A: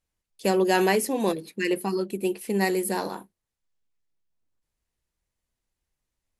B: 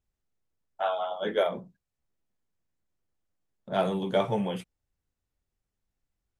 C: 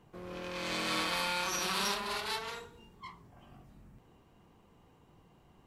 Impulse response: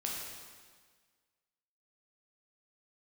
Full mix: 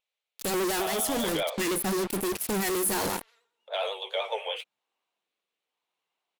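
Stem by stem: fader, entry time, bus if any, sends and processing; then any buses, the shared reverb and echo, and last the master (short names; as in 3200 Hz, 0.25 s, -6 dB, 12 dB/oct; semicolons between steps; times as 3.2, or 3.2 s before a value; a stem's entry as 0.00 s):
-12.5 dB, 0.00 s, no send, fuzz box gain 43 dB, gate -39 dBFS; high shelf 6000 Hz +10 dB
-0.5 dB, 0.00 s, no send, median filter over 3 samples; steep high-pass 450 Hz 72 dB/oct; band shelf 3000 Hz +10.5 dB 1.1 oct
-15.0 dB, 0.80 s, no send, HPF 790 Hz 12 dB/oct; rotary speaker horn 0.9 Hz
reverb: off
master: vibrato 10 Hz 54 cents; limiter -20 dBFS, peak gain reduction 7.5 dB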